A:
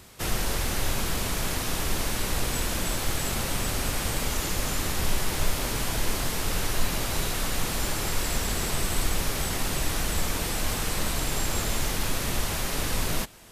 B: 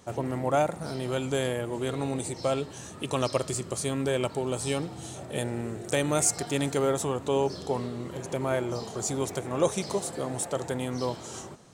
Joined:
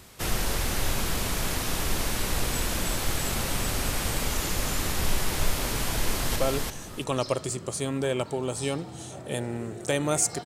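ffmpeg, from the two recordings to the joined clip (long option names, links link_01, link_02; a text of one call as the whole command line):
ffmpeg -i cue0.wav -i cue1.wav -filter_complex "[0:a]apad=whole_dur=10.45,atrim=end=10.45,atrim=end=6.362[link_01];[1:a]atrim=start=2.398:end=6.49[link_02];[link_01][link_02]acrossfade=duration=0.004:curve1=hsin:curve2=hsin,asplit=2[link_03][link_04];[link_04]afade=type=in:start_time=5.97:duration=0.01,afade=type=out:start_time=6.36:duration=0.01,aecho=0:1:340|680|1020:0.749894|0.149979|0.0299958[link_05];[link_03][link_05]amix=inputs=2:normalize=0" out.wav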